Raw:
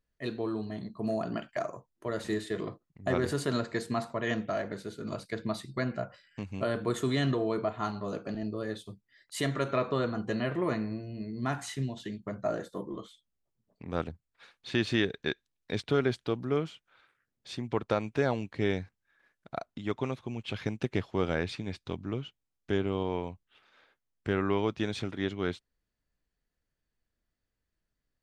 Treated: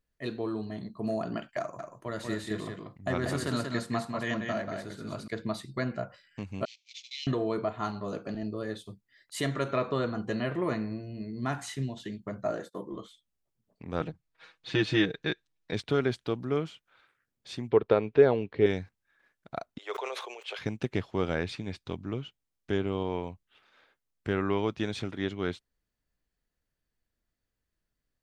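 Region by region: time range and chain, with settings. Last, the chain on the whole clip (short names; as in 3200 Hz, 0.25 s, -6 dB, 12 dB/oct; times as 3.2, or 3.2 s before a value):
1.6–5.28 bell 430 Hz -6.5 dB 0.59 oct + echo 0.187 s -5 dB
6.65–7.27 CVSD 32 kbps + steep high-pass 2200 Hz 96 dB/oct + gate -50 dBFS, range -14 dB
12.51–12.92 gate -52 dBFS, range -15 dB + low shelf 120 Hz -10 dB
14–15.73 air absorption 56 m + comb 6.3 ms, depth 94%
17.7–18.66 LPF 4000 Hz 24 dB/oct + bell 430 Hz +11.5 dB 0.5 oct
19.78–20.59 steep high-pass 420 Hz 48 dB/oct + sustainer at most 37 dB/s
whole clip: dry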